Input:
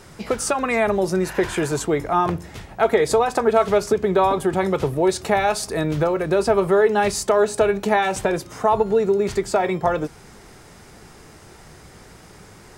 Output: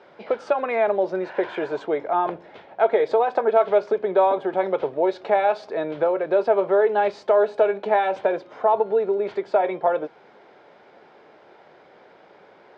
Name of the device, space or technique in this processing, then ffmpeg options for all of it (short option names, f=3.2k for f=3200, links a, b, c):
phone earpiece: -af "highpass=450,equalizer=f=570:t=q:w=4:g=5,equalizer=f=1.2k:t=q:w=4:g=-7,equalizer=f=1.9k:t=q:w=4:g=-7,equalizer=f=2.7k:t=q:w=4:g=-7,lowpass=f=3k:w=0.5412,lowpass=f=3k:w=1.3066"